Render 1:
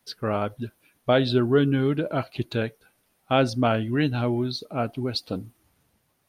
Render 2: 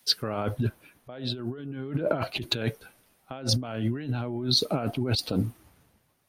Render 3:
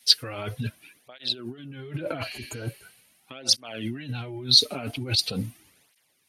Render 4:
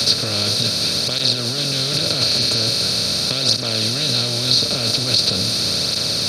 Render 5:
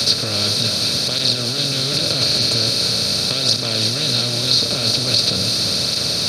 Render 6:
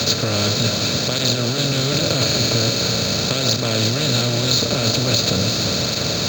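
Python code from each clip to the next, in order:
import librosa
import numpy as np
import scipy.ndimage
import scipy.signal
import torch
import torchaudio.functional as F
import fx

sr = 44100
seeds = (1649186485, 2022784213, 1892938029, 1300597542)

y1 = fx.over_compress(x, sr, threshold_db=-33.0, ratio=-1.0)
y1 = fx.band_widen(y1, sr, depth_pct=40)
y1 = y1 * librosa.db_to_amplitude(3.0)
y2 = fx.spec_repair(y1, sr, seeds[0], start_s=2.29, length_s=0.9, low_hz=1600.0, high_hz=6400.0, source='both')
y2 = fx.band_shelf(y2, sr, hz=4700.0, db=11.5, octaves=3.0)
y2 = fx.flanger_cancel(y2, sr, hz=0.42, depth_ms=6.3)
y2 = y2 * librosa.db_to_amplitude(-2.0)
y3 = fx.bin_compress(y2, sr, power=0.2)
y3 = fx.band_squash(y3, sr, depth_pct=70)
y3 = y3 * librosa.db_to_amplitude(-1.5)
y4 = y3 + 10.0 ** (-8.5 / 20.0) * np.pad(y3, (int(342 * sr / 1000.0), 0))[:len(y3)]
y5 = fx.air_absorb(y4, sr, metres=130.0)
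y5 = np.interp(np.arange(len(y5)), np.arange(len(y5))[::4], y5[::4])
y5 = y5 * librosa.db_to_amplitude(5.0)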